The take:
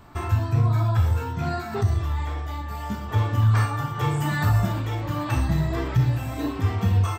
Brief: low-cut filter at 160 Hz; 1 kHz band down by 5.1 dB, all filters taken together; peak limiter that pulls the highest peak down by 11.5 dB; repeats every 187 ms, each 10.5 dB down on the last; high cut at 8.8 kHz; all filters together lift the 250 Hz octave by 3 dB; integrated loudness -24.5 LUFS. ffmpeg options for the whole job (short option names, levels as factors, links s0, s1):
-af "highpass=160,lowpass=8800,equalizer=f=250:t=o:g=6.5,equalizer=f=1000:t=o:g=-7,alimiter=limit=0.0631:level=0:latency=1,aecho=1:1:187|374|561:0.299|0.0896|0.0269,volume=2.51"